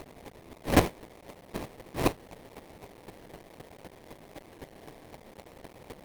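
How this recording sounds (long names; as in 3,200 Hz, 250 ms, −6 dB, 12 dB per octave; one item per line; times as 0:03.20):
a quantiser's noise floor 8 bits, dither triangular
chopped level 3.9 Hz, depth 60%, duty 10%
aliases and images of a low sample rate 1,400 Hz, jitter 20%
Opus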